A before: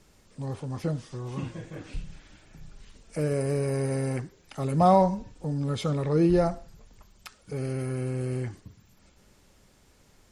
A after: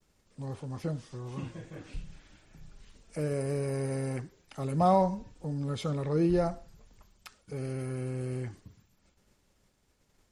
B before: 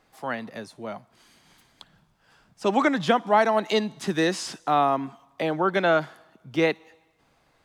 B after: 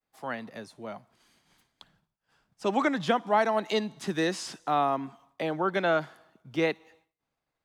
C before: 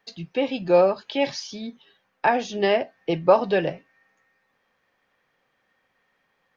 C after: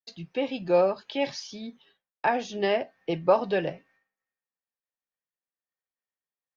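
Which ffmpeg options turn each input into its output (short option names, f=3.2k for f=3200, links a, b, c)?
-af "agate=range=-33dB:threshold=-53dB:ratio=3:detection=peak,volume=-4.5dB"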